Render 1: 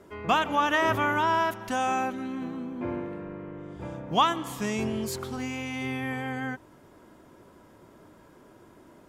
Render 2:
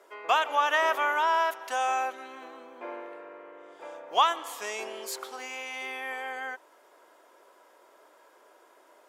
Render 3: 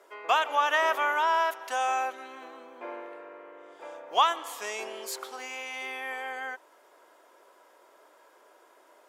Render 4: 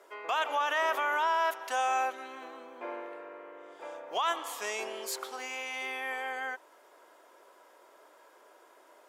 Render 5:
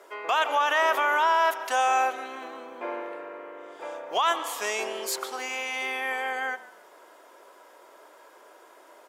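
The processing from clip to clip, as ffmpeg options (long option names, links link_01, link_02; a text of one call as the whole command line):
ffmpeg -i in.wav -af "highpass=frequency=480:width=0.5412,highpass=frequency=480:width=1.3066" out.wav
ffmpeg -i in.wav -af "lowshelf=frequency=160:gain=-4" out.wav
ffmpeg -i in.wav -af "alimiter=limit=-21dB:level=0:latency=1:release=22" out.wav
ffmpeg -i in.wav -filter_complex "[0:a]asplit=4[link_01][link_02][link_03][link_04];[link_02]adelay=144,afreqshift=-30,volume=-18.5dB[link_05];[link_03]adelay=288,afreqshift=-60,volume=-29dB[link_06];[link_04]adelay=432,afreqshift=-90,volume=-39.4dB[link_07];[link_01][link_05][link_06][link_07]amix=inputs=4:normalize=0,volume=6dB" out.wav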